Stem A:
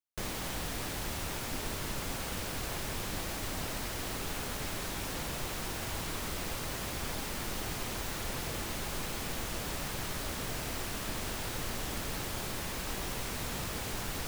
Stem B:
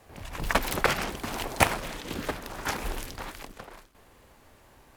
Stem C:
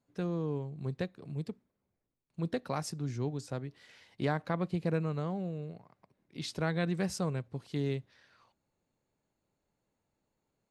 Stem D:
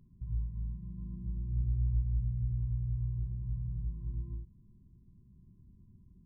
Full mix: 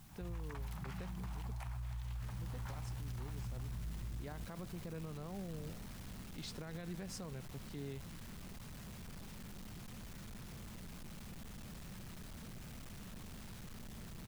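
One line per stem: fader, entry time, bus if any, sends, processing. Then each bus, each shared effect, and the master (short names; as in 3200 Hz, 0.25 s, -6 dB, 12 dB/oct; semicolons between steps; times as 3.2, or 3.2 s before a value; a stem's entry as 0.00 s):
-15.0 dB, 2.05 s, no bus, no send, resonant low shelf 260 Hz +8 dB, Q 3; hard clip -32 dBFS, distortion -8 dB
-8.5 dB, 0.00 s, no bus, no send, compressor 2:1, threshold -33 dBFS, peak gain reduction 10.5 dB; requantised 8-bit, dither triangular; ladder high-pass 700 Hz, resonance 40%
-6.5 dB, 0.00 s, bus A, no send, dry
+2.0 dB, 0.00 s, bus A, no send, dry
bus A: 0.0 dB, compressor 4:1, threshold -37 dBFS, peak gain reduction 12 dB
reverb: off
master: limiter -36 dBFS, peak gain reduction 9 dB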